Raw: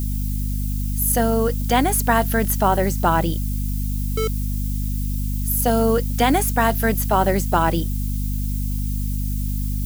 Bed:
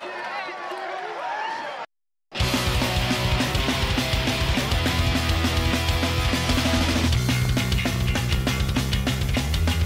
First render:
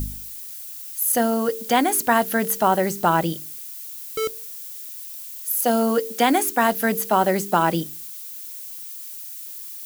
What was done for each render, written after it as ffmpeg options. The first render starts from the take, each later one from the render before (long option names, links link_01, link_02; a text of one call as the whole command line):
ffmpeg -i in.wav -af "bandreject=frequency=50:width_type=h:width=4,bandreject=frequency=100:width_type=h:width=4,bandreject=frequency=150:width_type=h:width=4,bandreject=frequency=200:width_type=h:width=4,bandreject=frequency=250:width_type=h:width=4,bandreject=frequency=300:width_type=h:width=4,bandreject=frequency=350:width_type=h:width=4,bandreject=frequency=400:width_type=h:width=4,bandreject=frequency=450:width_type=h:width=4" out.wav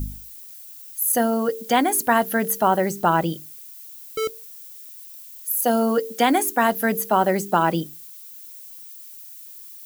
ffmpeg -i in.wav -af "afftdn=noise_reduction=7:noise_floor=-36" out.wav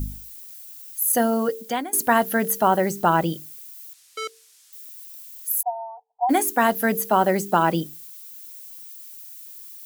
ffmpeg -i in.wav -filter_complex "[0:a]asettb=1/sr,asplit=3[link_01][link_02][link_03];[link_01]atrim=end=3.934[link_04];[link_02]atrim=start=3.93:end=4.73,asetpts=PTS-STARTPTS,afade=type=in:duration=0.004:curve=qsin,afade=type=out:start_time=0.796:duration=0.004:curve=qsin,highpass=780,lowpass=7800[link_05];[link_03]atrim=start=4.726[link_06];[link_04][link_05]acrossfade=duration=0.004:curve1=hsin:curve2=qsin[link_07];[link_07][link_06]acrossfade=duration=0.004:curve1=qsin:curve2=hsin,asplit=3[link_08][link_09][link_10];[link_08]afade=type=out:start_time=5.61:duration=0.02[link_11];[link_09]asuperpass=centerf=820:order=8:qfactor=3.4,afade=type=in:start_time=5.61:duration=0.02,afade=type=out:start_time=6.29:duration=0.02[link_12];[link_10]afade=type=in:start_time=6.29:duration=0.02[link_13];[link_11][link_12][link_13]amix=inputs=3:normalize=0,asplit=2[link_14][link_15];[link_14]atrim=end=1.93,asetpts=PTS-STARTPTS,afade=type=out:start_time=1.43:duration=0.5:silence=0.125893[link_16];[link_15]atrim=start=1.93,asetpts=PTS-STARTPTS,afade=type=in:duration=0.004:curve=hsin:silence=0.125893[link_17];[link_16][link_17]concat=n=2:v=0:a=1" out.wav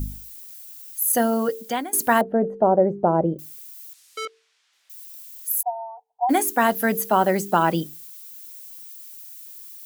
ffmpeg -i in.wav -filter_complex "[0:a]asettb=1/sr,asplit=3[link_01][link_02][link_03];[link_01]atrim=end=2.214[link_04];[link_02]atrim=start=2.21:end=3.39,asetpts=PTS-STARTPTS,afade=type=in:duration=0.004:curve=qsin,afade=type=out:start_time=1.176:duration=0.004:curve=qsin,lowpass=frequency=580:width_type=q:width=1.9[link_05];[link_03]atrim=start=3.386[link_06];[link_04][link_05]acrossfade=duration=0.004:curve1=hsin:curve2=qsin[link_07];[link_07][link_06]acrossfade=duration=0.004:curve1=qsin:curve2=hsin,asettb=1/sr,asplit=3[link_08][link_09][link_10];[link_08]atrim=end=4.254[link_11];[link_09]atrim=start=4.25:end=4.9,asetpts=PTS-STARTPTS,afade=type=in:duration=0.004:curve=qsin,afade=type=out:start_time=0.646:duration=0.004:curve=qsin,highpass=350,lowpass=2800[link_12];[link_10]atrim=start=4.896[link_13];[link_11][link_12]acrossfade=duration=0.004:curve1=hsin:curve2=qsin[link_14];[link_14][link_13]acrossfade=duration=0.004:curve1=qsin:curve2=hsin" out.wav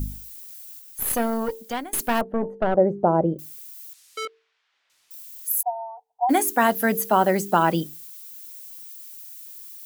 ffmpeg -i in.wav -filter_complex "[0:a]asettb=1/sr,asplit=3[link_01][link_02][link_03];[link_01]atrim=end=0.794[link_04];[link_02]atrim=start=0.79:end=2.77,asetpts=PTS-STARTPTS,afade=type=in:duration=0.004:curve=qsin,afade=type=out:start_time=1.976:duration=0.004:curve=qsin,aeval=exprs='(tanh(5.62*val(0)+0.75)-tanh(0.75))/5.62':channel_layout=same[link_05];[link_03]atrim=start=2.766[link_06];[link_04][link_05]acrossfade=duration=0.004:curve1=hsin:curve2=qsin[link_07];[link_07][link_06]acrossfade=duration=0.004:curve1=qsin:curve2=hsin,asettb=1/sr,asplit=3[link_08][link_09][link_10];[link_08]atrim=end=4.234[link_11];[link_09]atrim=start=4.23:end=5.11,asetpts=PTS-STARTPTS,afade=type=in:duration=0.004:curve=qsin,afade=type=out:start_time=0.876:duration=0.004:curve=qsin,adynamicsmooth=sensitivity=6:basefreq=3300[link_12];[link_10]atrim=start=5.106[link_13];[link_11][link_12]acrossfade=duration=0.004:curve1=hsin:curve2=qsin[link_14];[link_14][link_13]acrossfade=duration=0.004:curve1=qsin:curve2=hsin" out.wav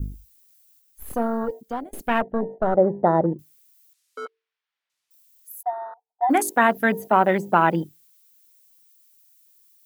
ffmpeg -i in.wav -af "afwtdn=0.0316,adynamicequalizer=threshold=0.0316:dfrequency=2000:dqfactor=0.72:tfrequency=2000:tqfactor=0.72:attack=5:release=100:ratio=0.375:range=2:mode=boostabove:tftype=bell" out.wav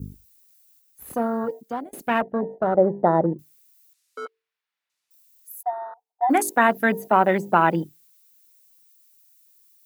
ffmpeg -i in.wav -af "highpass=100,bandreject=frequency=3200:width=24" out.wav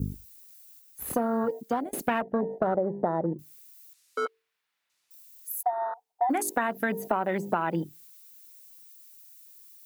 ffmpeg -i in.wav -filter_complex "[0:a]asplit=2[link_01][link_02];[link_02]alimiter=limit=-14dB:level=0:latency=1,volume=-1dB[link_03];[link_01][link_03]amix=inputs=2:normalize=0,acompressor=threshold=-23dB:ratio=12" out.wav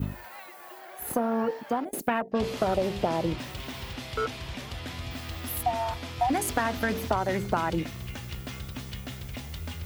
ffmpeg -i in.wav -i bed.wav -filter_complex "[1:a]volume=-15dB[link_01];[0:a][link_01]amix=inputs=2:normalize=0" out.wav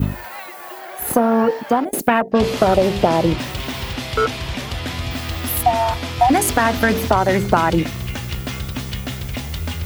ffmpeg -i in.wav -af "volume=11.5dB,alimiter=limit=-1dB:level=0:latency=1" out.wav